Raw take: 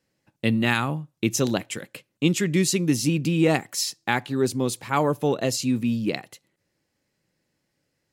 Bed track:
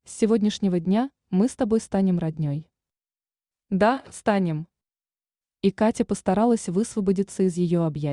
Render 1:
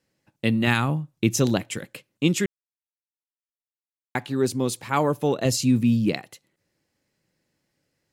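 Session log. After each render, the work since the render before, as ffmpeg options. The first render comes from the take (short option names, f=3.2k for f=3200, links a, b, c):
-filter_complex "[0:a]asettb=1/sr,asplit=3[a][b][c];[a]atrim=end=0.674[d];[b]atrim=start=0.67:end=1.94,asetpts=PTS-STARTPTS,afade=t=in:d=0.004:c=qsin,afade=t=out:st=1.266:d=0.004:c=qsin,lowshelf=f=160:g=7.5[e];[c]atrim=start=1.936[f];[d][e]acrossfade=d=0.004:c1=hsin:c2=qsin[g];[g][f]acrossfade=d=0.004:c1=qsin:c2=hsin,asettb=1/sr,asplit=3[h][i][j];[h]atrim=end=5.454[k];[i]atrim=start=5.45:end=6.13,asetpts=PTS-STARTPTS,afade=t=in:d=0.004:c=qsin,afade=t=out:st=0.676:d=0.004:c=qsin,bass=f=250:g=7,treble=f=4k:g=2[l];[j]atrim=start=6.126[m];[k][l]acrossfade=d=0.004:c1=hsin:c2=qsin[n];[n][m]acrossfade=d=0.004:c1=qsin:c2=hsin,asplit=3[o][p][q];[o]atrim=end=2.46,asetpts=PTS-STARTPTS,afade=t=out:st=2.456:d=0.004:c=hsin[r];[p]atrim=start=2.46:end=4.15,asetpts=PTS-STARTPTS,volume=0[s];[q]atrim=start=4.15,asetpts=PTS-STARTPTS,afade=t=in:d=0.004:c=hsin[t];[r][s][t]concat=n=3:v=0:a=1"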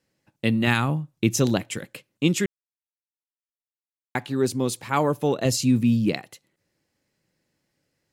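-af anull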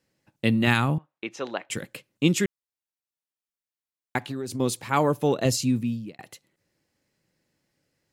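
-filter_complex "[0:a]asettb=1/sr,asplit=3[a][b][c];[a]atrim=end=0.984[d];[b]atrim=start=0.98:end=1.7,asetpts=PTS-STARTPTS,afade=t=in:d=0.004:c=qsin,afade=t=out:st=0.716:d=0.004:c=qsin,highpass=670,lowpass=2.2k[e];[c]atrim=start=1.696[f];[d][e]acrossfade=d=0.004:c1=hsin:c2=qsin[g];[g][f]acrossfade=d=0.004:c1=qsin:c2=hsin,asettb=1/sr,asplit=3[h][i][j];[h]atrim=end=4.184[k];[i]atrim=start=4.18:end=4.6,asetpts=PTS-STARTPTS,afade=t=in:d=0.004:c=qsin,afade=t=out:st=0.416:d=0.004:c=qsin,acompressor=threshold=-27dB:ratio=12:attack=3.2:release=140:knee=1:detection=peak[l];[j]atrim=start=4.596[m];[k][l]acrossfade=d=0.004:c1=hsin:c2=qsin[n];[n][m]acrossfade=d=0.004:c1=qsin:c2=hsin,asplit=2[o][p];[o]atrim=end=6.19,asetpts=PTS-STARTPTS,afade=t=out:st=5.44:d=0.75[q];[p]atrim=start=6.19,asetpts=PTS-STARTPTS,afade=t=in:d=0.004:c=hsin[r];[q][r]concat=n=2:v=0:a=1"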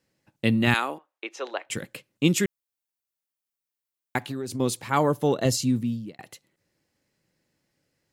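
-filter_complex "[0:a]asettb=1/sr,asplit=3[a][b][c];[a]atrim=end=0.744[d];[b]atrim=start=0.74:end=1.66,asetpts=PTS-STARTPTS,afade=t=in:d=0.004:c=qsin,afade=t=out:st=0.916:d=0.004:c=qsin,highpass=f=360:w=0.5412,highpass=f=360:w=1.3066[e];[c]atrim=start=1.656[f];[d][e]acrossfade=d=0.004:c1=hsin:c2=qsin[g];[g][f]acrossfade=d=0.004:c1=qsin:c2=hsin,asettb=1/sr,asplit=3[h][i][j];[h]atrim=end=2.244[k];[i]atrim=start=2.24:end=4.39,asetpts=PTS-STARTPTS,afade=t=in:d=0.004:c=qsin,afade=t=out:st=2.146:d=0.004:c=qsin,highshelf=f=11k:g=8[l];[j]atrim=start=4.386[m];[k][l]acrossfade=d=0.004:c1=hsin:c2=qsin[n];[n][m]acrossfade=d=0.004:c1=qsin:c2=hsin,asettb=1/sr,asplit=3[o][p][q];[o]atrim=end=4.904[r];[p]atrim=start=4.9:end=6.18,asetpts=PTS-STARTPTS,afade=t=in:d=0.004:c=qsin,afade=t=out:st=1.276:d=0.004:c=qsin,bandreject=f=2.5k:w=8.4[s];[q]atrim=start=6.176[t];[r][s]acrossfade=d=0.004:c1=hsin:c2=qsin[u];[u][t]acrossfade=d=0.004:c1=qsin:c2=hsin"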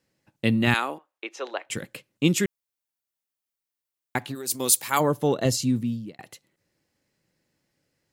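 -filter_complex "[0:a]asplit=3[a][b][c];[a]afade=t=out:st=4.34:d=0.02[d];[b]aemphasis=mode=production:type=riaa,afade=t=in:st=4.34:d=0.02,afade=t=out:st=4.99:d=0.02[e];[c]afade=t=in:st=4.99:d=0.02[f];[d][e][f]amix=inputs=3:normalize=0"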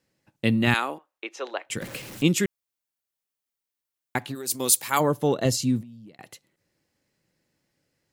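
-filter_complex "[0:a]asettb=1/sr,asplit=3[a][b][c];[a]atrim=end=1.814[d];[b]atrim=start=1.81:end=2.23,asetpts=PTS-STARTPTS,afade=t=in:d=0.004:c=qsin,afade=t=out:st=0.416:d=0.004:c=qsin,aeval=exprs='val(0)+0.5*0.0188*sgn(val(0))':c=same[e];[c]atrim=start=2.226[f];[d][e]acrossfade=d=0.004:c1=hsin:c2=qsin[g];[g][f]acrossfade=d=0.004:c1=qsin:c2=hsin,asettb=1/sr,asplit=3[h][i][j];[h]atrim=end=5.814[k];[i]atrim=start=5.81:end=6.21,asetpts=PTS-STARTPTS,afade=t=in:d=0.004:c=qsin,afade=t=out:st=0.396:d=0.004:c=qsin,acompressor=threshold=-42dB:ratio=8:attack=3.2:release=140:knee=1:detection=peak[l];[j]atrim=start=6.206[m];[k][l]acrossfade=d=0.004:c1=hsin:c2=qsin[n];[n][m]acrossfade=d=0.004:c1=qsin:c2=hsin"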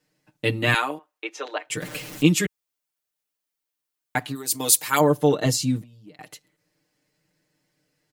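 -af "equalizer=f=63:w=1.1:g=-10.5,aecho=1:1:6.6:0.95"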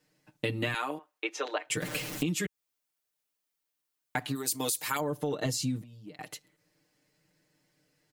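-af "alimiter=limit=-12dB:level=0:latency=1:release=10,acompressor=threshold=-27dB:ratio=12"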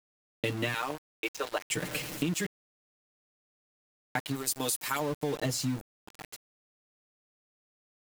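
-af "aeval=exprs='val(0)*gte(abs(val(0)),0.0141)':c=same"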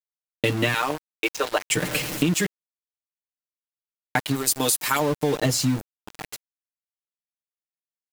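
-af "volume=9dB"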